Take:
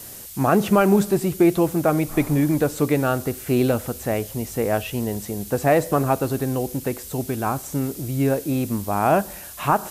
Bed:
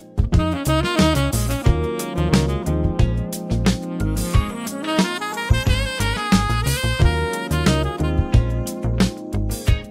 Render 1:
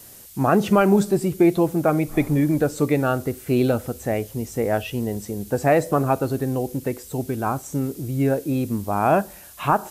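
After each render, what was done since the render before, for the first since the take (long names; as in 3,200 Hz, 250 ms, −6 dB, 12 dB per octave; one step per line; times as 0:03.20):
noise reduction from a noise print 6 dB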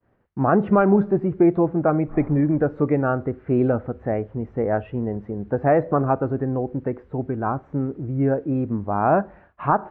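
low-pass filter 1,700 Hz 24 dB per octave
downward expander −44 dBFS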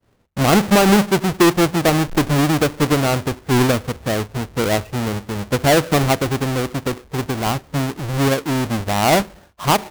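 each half-wave held at its own peak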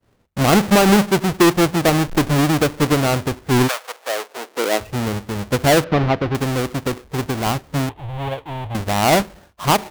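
0:03.67–0:04.80: high-pass filter 760 Hz → 260 Hz 24 dB per octave
0:05.84–0:06.35: high-frequency loss of the air 270 metres
0:07.89–0:08.75: drawn EQ curve 110 Hz 0 dB, 200 Hz −20 dB, 410 Hz −12 dB, 860 Hz +1 dB, 1,300 Hz −13 dB, 2,200 Hz −9 dB, 3,400 Hz −7 dB, 5,100 Hz −26 dB, 13,000 Hz −21 dB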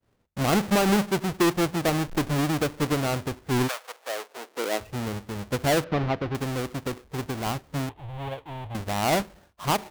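level −8.5 dB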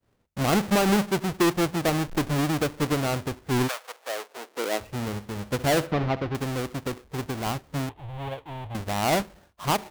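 0:04.77–0:06.24: flutter between parallel walls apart 11.6 metres, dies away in 0.24 s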